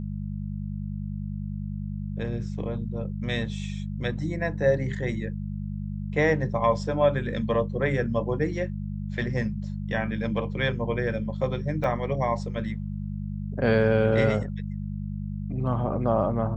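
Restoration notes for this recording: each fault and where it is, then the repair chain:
mains hum 50 Hz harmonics 4 −32 dBFS
0:11.84: drop-out 3.6 ms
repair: hum removal 50 Hz, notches 4
repair the gap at 0:11.84, 3.6 ms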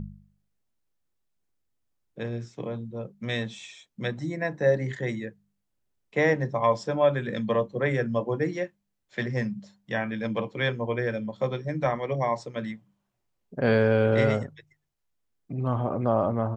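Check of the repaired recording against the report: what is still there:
none of them is left

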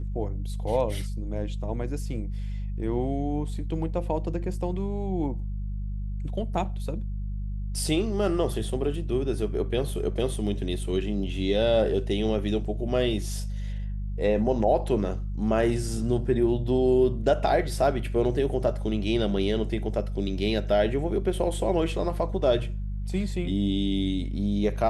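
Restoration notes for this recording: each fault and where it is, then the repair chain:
mains hum 50 Hz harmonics 4 −31 dBFS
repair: hum removal 50 Hz, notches 4

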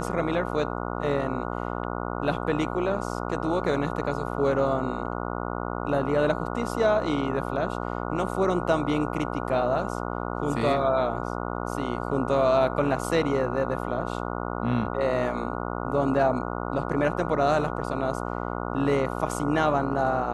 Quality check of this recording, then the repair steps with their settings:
mains buzz 60 Hz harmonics 24 −31 dBFS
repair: hum removal 60 Hz, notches 24

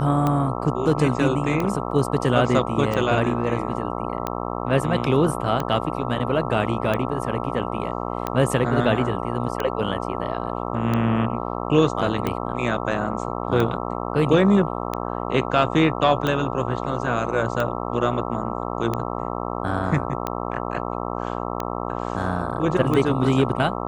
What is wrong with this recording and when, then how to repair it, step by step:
mains buzz 60 Hz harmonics 22 −28 dBFS
scratch tick 45 rpm −11 dBFS
0:01.91: drop-out 2.8 ms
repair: click removal
hum removal 60 Hz, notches 22
repair the gap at 0:01.91, 2.8 ms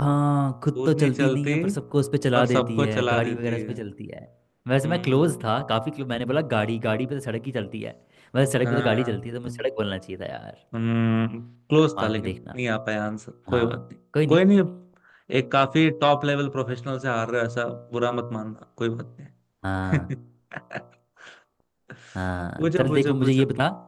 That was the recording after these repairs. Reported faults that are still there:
none of them is left

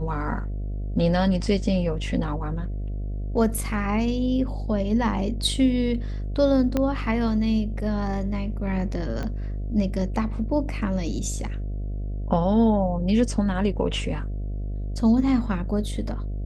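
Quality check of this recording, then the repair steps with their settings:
mains buzz 50 Hz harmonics 14 −29 dBFS
0:06.77: click −11 dBFS
0:09.23: click −19 dBFS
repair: click removal
hum removal 50 Hz, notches 14

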